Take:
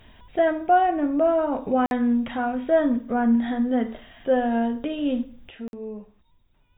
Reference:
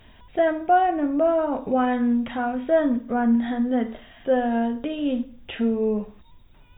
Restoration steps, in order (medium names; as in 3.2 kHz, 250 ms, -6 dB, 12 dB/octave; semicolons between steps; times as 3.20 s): interpolate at 1.86/5.68 s, 51 ms; gain correction +11.5 dB, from 5.49 s